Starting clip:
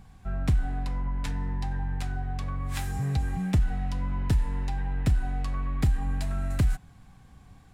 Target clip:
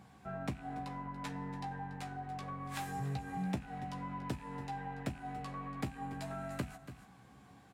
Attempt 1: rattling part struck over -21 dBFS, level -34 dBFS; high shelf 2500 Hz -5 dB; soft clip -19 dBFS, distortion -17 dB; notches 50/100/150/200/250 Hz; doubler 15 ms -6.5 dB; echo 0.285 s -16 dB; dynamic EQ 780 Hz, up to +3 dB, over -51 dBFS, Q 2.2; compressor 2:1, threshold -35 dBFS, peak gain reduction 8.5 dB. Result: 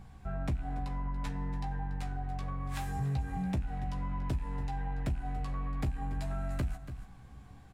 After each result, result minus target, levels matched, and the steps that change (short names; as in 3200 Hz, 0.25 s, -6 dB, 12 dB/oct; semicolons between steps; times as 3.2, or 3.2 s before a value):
soft clip: distortion +10 dB; 250 Hz band -3.0 dB
change: soft clip -13 dBFS, distortion -27 dB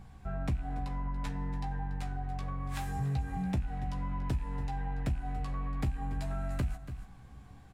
250 Hz band -3.0 dB
add after compressor: HPF 180 Hz 12 dB/oct